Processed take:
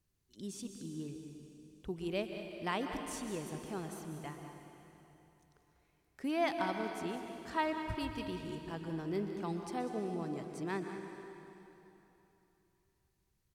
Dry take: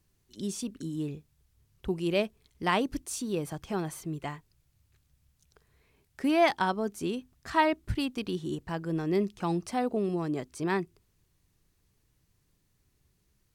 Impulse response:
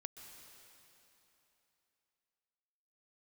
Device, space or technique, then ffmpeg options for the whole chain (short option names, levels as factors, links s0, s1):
cave: -filter_complex "[0:a]aecho=1:1:195:0.224[s0];[1:a]atrim=start_sample=2205[s1];[s0][s1]afir=irnorm=-1:irlink=0,volume=0.631"